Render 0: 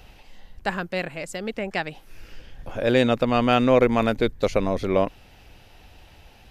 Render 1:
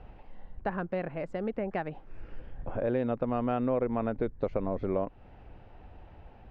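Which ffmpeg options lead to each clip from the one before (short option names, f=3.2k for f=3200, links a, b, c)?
-af "lowpass=1.2k,acompressor=threshold=-29dB:ratio=3"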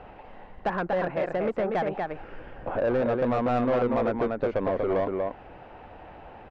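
-filter_complex "[0:a]aecho=1:1:239:0.531,asplit=2[a][b];[b]highpass=f=720:p=1,volume=20dB,asoftclip=type=tanh:threshold=-16dB[c];[a][c]amix=inputs=2:normalize=0,lowpass=f=1.6k:p=1,volume=-6dB"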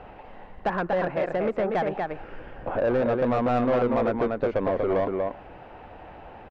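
-af "aecho=1:1:117:0.075,volume=1.5dB"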